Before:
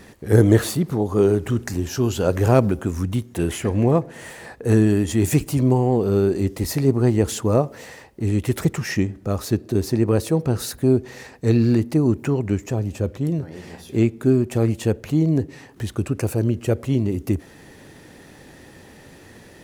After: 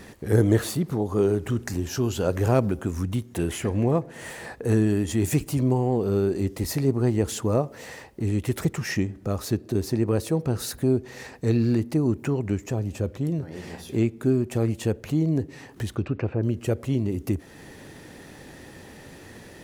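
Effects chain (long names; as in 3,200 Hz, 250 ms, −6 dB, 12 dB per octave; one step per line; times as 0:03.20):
0:15.95–0:16.42: low-pass filter 5,700 Hz → 2,200 Hz 24 dB per octave
in parallel at +2 dB: downward compressor, threshold −30 dBFS, peak gain reduction 20 dB
on the sum: level −6.5 dB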